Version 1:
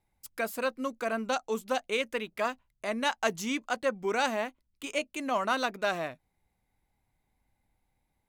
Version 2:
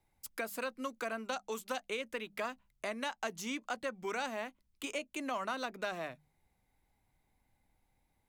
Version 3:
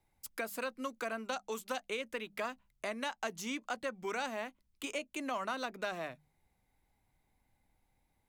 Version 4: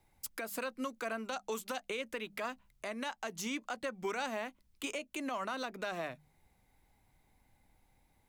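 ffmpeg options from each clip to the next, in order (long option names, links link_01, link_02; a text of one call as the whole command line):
ffmpeg -i in.wav -filter_complex "[0:a]bandreject=frequency=50:width_type=h:width=6,bandreject=frequency=100:width_type=h:width=6,bandreject=frequency=150:width_type=h:width=6,bandreject=frequency=200:width_type=h:width=6,acrossover=split=250|1000[link_01][link_02][link_03];[link_01]acompressor=threshold=-54dB:ratio=4[link_04];[link_02]acompressor=threshold=-42dB:ratio=4[link_05];[link_03]acompressor=threshold=-41dB:ratio=4[link_06];[link_04][link_05][link_06]amix=inputs=3:normalize=0,volume=1dB" out.wav
ffmpeg -i in.wav -af anull out.wav
ffmpeg -i in.wav -af "alimiter=level_in=9.5dB:limit=-24dB:level=0:latency=1:release=252,volume=-9.5dB,volume=6dB" out.wav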